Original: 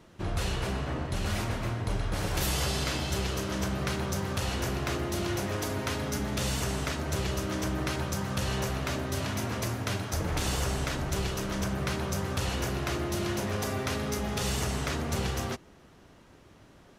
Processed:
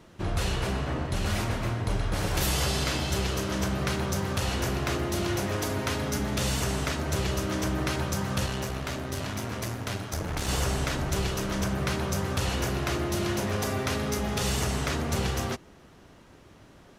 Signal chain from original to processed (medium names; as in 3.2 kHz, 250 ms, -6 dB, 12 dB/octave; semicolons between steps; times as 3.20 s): 8.46–10.49 s: valve stage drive 22 dB, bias 0.7; trim +2.5 dB